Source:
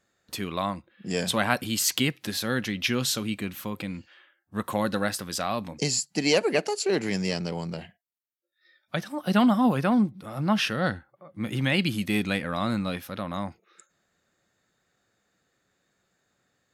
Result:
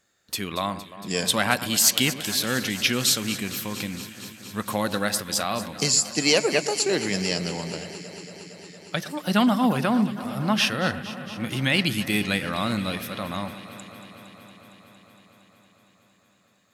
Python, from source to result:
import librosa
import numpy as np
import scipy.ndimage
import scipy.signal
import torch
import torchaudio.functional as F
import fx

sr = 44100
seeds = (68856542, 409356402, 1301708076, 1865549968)

y = fx.high_shelf(x, sr, hz=2300.0, db=7.5)
y = fx.echo_alternate(y, sr, ms=115, hz=2000.0, feedback_pct=89, wet_db=-13.5)